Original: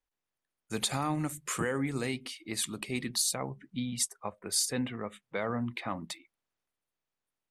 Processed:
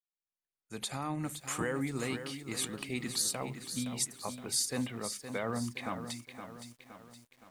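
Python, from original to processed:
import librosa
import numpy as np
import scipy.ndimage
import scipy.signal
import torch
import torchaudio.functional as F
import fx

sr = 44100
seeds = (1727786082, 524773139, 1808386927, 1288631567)

y = fx.fade_in_head(x, sr, length_s=1.44)
y = fx.echo_crushed(y, sr, ms=517, feedback_pct=55, bits=9, wet_db=-9.0)
y = F.gain(torch.from_numpy(y), -2.5).numpy()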